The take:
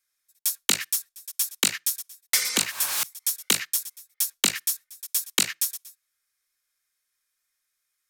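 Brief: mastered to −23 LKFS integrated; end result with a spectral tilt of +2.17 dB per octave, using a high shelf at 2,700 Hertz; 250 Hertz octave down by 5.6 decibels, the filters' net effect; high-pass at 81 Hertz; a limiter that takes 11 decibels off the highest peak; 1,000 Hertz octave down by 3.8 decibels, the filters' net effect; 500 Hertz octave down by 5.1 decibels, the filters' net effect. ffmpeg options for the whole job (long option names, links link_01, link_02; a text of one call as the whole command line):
ffmpeg -i in.wav -af "highpass=81,equalizer=frequency=250:width_type=o:gain=-6,equalizer=frequency=500:width_type=o:gain=-3.5,equalizer=frequency=1000:width_type=o:gain=-5,highshelf=frequency=2700:gain=4.5,volume=3.5dB,alimiter=limit=-8.5dB:level=0:latency=1" out.wav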